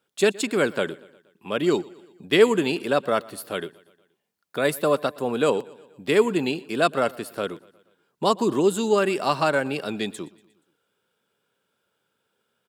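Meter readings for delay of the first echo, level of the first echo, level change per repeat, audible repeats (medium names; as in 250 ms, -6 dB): 119 ms, -22.5 dB, -5.0 dB, 3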